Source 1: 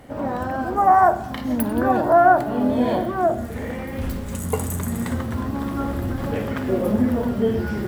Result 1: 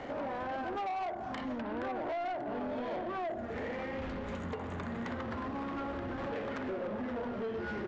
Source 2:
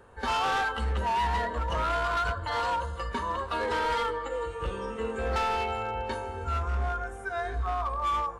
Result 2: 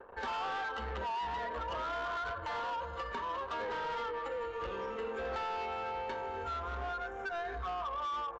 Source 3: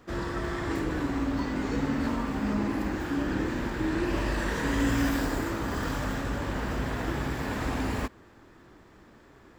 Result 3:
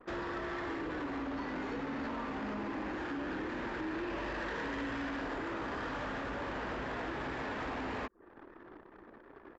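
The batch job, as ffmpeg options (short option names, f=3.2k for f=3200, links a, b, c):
-filter_complex "[0:a]acrossover=split=640|3600[a][b][c];[a]acompressor=threshold=-22dB:ratio=4[d];[b]acompressor=threshold=-29dB:ratio=4[e];[c]acompressor=threshold=-59dB:ratio=4[f];[d][e][f]amix=inputs=3:normalize=0,bass=f=250:g=-12,treble=f=4k:g=-3,acompressor=threshold=-44dB:ratio=2.5,anlmdn=0.000631,aresample=16000,asoftclip=type=tanh:threshold=-39.5dB,aresample=44100,volume=7dB"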